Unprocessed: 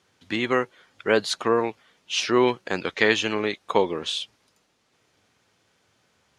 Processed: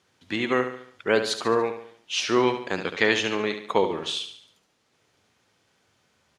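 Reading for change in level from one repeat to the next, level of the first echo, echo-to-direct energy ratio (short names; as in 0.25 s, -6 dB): -6.5 dB, -9.0 dB, -8.0 dB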